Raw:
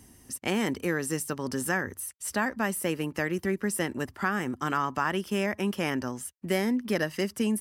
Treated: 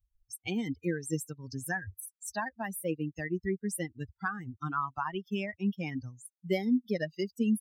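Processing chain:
spectral dynamics exaggerated over time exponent 3
low-shelf EQ 220 Hz +7.5 dB

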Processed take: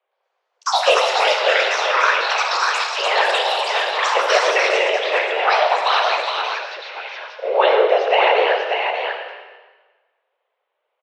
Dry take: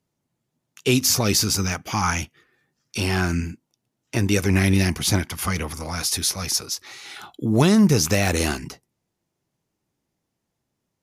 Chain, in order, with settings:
random phases in short frames
single-tap delay 589 ms −4.5 dB
on a send at −4.5 dB: convolution reverb RT60 1.3 s, pre-delay 30 ms
on the sum: single-sideband voice off tune +190 Hz 320–3,100 Hz
delay with pitch and tempo change per echo 116 ms, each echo +6 semitones, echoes 2
level +6 dB

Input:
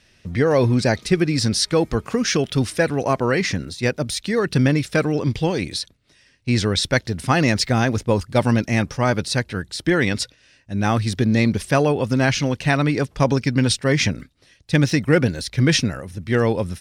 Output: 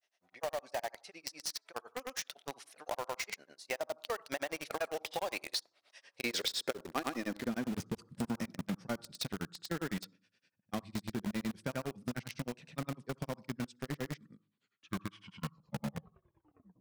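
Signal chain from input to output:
turntable brake at the end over 2.81 s
source passing by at 0:06.04, 17 m/s, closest 8 metres
granular cloud, grains 9.8 per second
on a send at −20 dB: high shelf with overshoot 1,600 Hz −10 dB, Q 3 + convolution reverb RT60 0.40 s, pre-delay 57 ms
on the sum: high-pass filter sweep 710 Hz → 180 Hz, 0:05.93–0:07.83
in parallel at −6 dB: log-companded quantiser 2 bits
on the sum: downward compressor 6 to 1, threshold −35 dBFS, peak gain reduction 20.5 dB
level +1.5 dB

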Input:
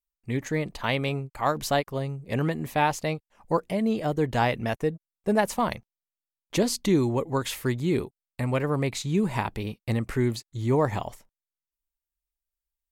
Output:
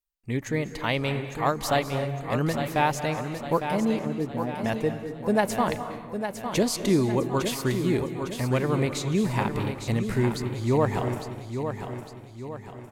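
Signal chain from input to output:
0:03.99–0:04.65: resonant band-pass 230 Hz, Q 1.5
repeating echo 856 ms, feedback 46%, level −8 dB
on a send at −9.5 dB: convolution reverb RT60 0.90 s, pre-delay 179 ms

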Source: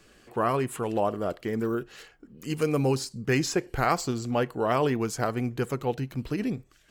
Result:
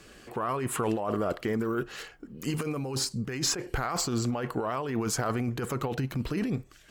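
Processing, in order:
compressor whose output falls as the input rises −31 dBFS, ratio −1
dynamic equaliser 1,200 Hz, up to +5 dB, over −48 dBFS, Q 1.4
harmonic generator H 5 −30 dB, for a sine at −15.5 dBFS

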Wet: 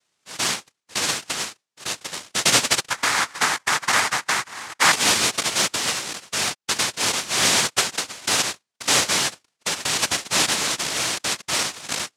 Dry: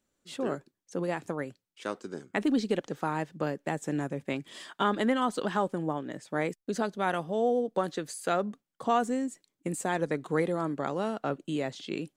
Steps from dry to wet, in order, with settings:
cochlear-implant simulation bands 1
0:02.90–0:04.92: flat-topped bell 1,300 Hz +9.5 dB
level +7 dB

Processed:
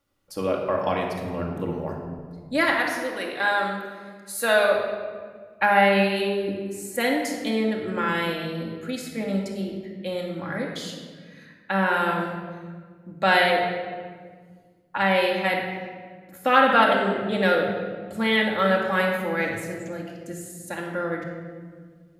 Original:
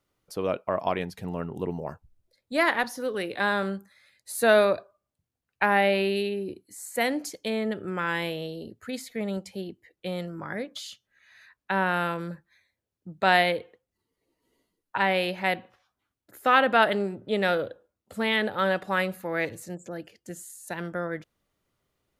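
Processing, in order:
0:02.64–0:04.75: high-pass filter 620 Hz 6 dB per octave
rectangular room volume 2,100 cubic metres, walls mixed, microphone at 2.3 metres

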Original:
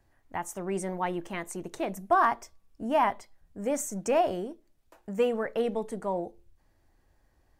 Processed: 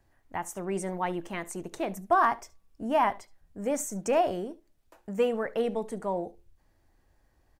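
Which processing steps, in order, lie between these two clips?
single-tap delay 71 ms −21.5 dB

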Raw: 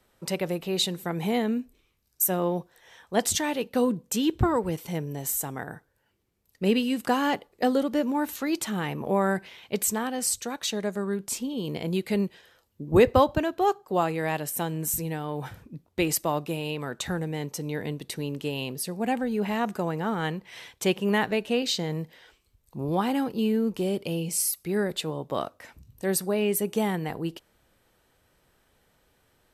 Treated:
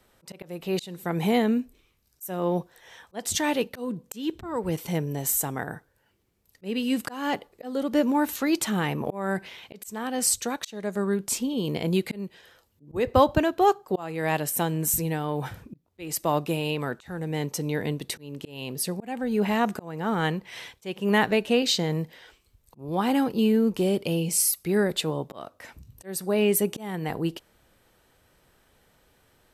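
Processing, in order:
volume swells 371 ms
level +3.5 dB

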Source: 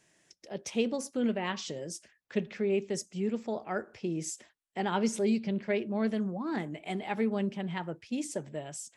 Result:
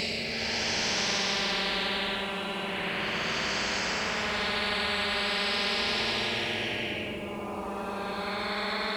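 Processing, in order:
extreme stretch with random phases 15×, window 0.10 s, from 0:05.39
every bin compressed towards the loudest bin 10 to 1

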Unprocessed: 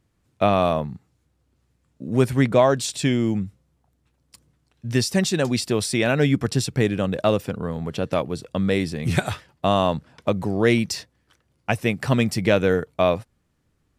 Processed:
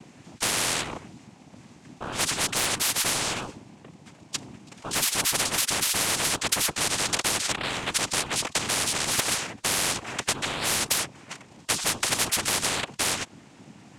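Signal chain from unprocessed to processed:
cochlear-implant simulation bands 4
hard clipping −7.5 dBFS, distortion −27 dB
every bin compressed towards the loudest bin 10 to 1

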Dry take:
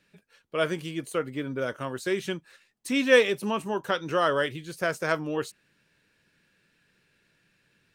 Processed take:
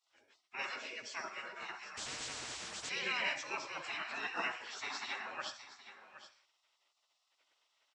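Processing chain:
hearing-aid frequency compression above 2,000 Hz 1.5 to 1
single-tap delay 768 ms −13.5 dB
on a send at −5 dB: convolution reverb RT60 0.45 s, pre-delay 55 ms
on the sum: gate on every frequency bin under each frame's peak −20 dB weak
compressor whose output falls as the input rises −32 dBFS, ratio −1
high-pass filter 500 Hz 6 dB per octave
0:01.97–0:02.89: every bin compressed towards the loudest bin 10 to 1
level −1 dB

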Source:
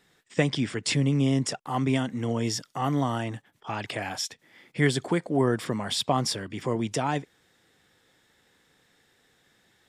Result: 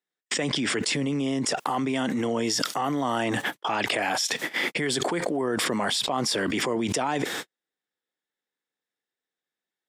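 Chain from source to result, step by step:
noise gate −54 dBFS, range −60 dB
high-pass filter 260 Hz 12 dB per octave
envelope flattener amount 100%
level −6 dB

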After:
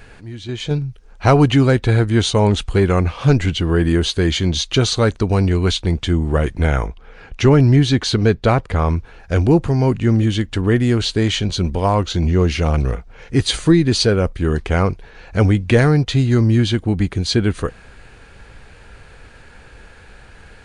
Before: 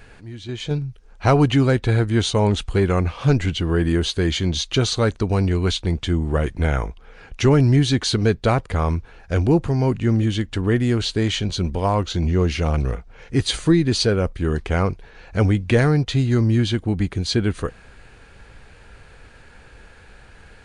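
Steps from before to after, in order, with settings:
0:06.87–0:08.97: high-shelf EQ 7,900 Hz −10 dB
level +3.5 dB

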